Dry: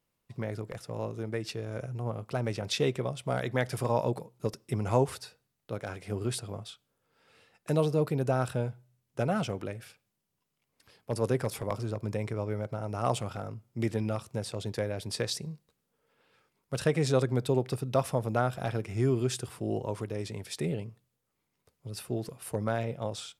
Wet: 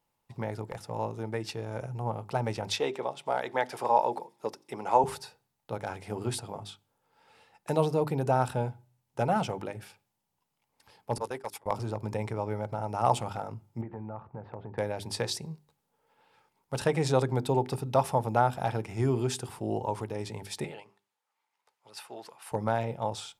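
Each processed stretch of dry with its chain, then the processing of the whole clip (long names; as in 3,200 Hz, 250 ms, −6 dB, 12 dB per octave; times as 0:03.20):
0:02.76–0:05.04: high-pass filter 340 Hz + parametric band 11,000 Hz −7 dB 1.5 octaves + delay with a high-pass on its return 88 ms, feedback 80%, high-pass 4,700 Hz, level −21 dB
0:11.18–0:11.66: high-pass filter 1,000 Hz 6 dB per octave + noise gate −41 dBFS, range −21 dB
0:13.81–0:14.78: low-pass filter 1,700 Hz 24 dB per octave + downward compressor 10 to 1, threshold −35 dBFS
0:20.64–0:22.52: resonant band-pass 1,300 Hz, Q 0.67 + spectral tilt +3 dB per octave
whole clip: parametric band 860 Hz +14 dB 0.31 octaves; mains-hum notches 50/100/150/200/250/300/350/400 Hz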